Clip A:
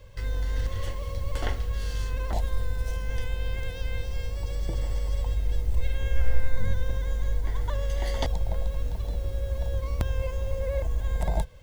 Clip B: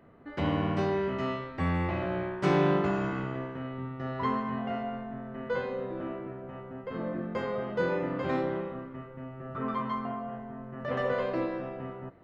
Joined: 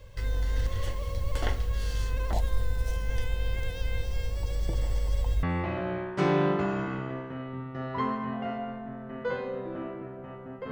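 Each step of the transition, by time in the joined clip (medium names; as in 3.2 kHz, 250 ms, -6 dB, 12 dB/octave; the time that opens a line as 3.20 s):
clip A
5.43 s: go over to clip B from 1.68 s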